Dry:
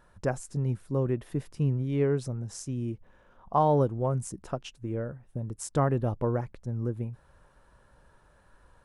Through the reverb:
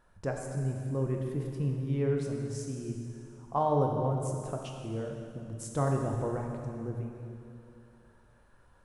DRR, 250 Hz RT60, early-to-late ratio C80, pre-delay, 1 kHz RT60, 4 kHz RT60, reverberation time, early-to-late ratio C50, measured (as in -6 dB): 1.0 dB, 2.6 s, 3.5 dB, 7 ms, 2.6 s, 2.4 s, 2.6 s, 2.5 dB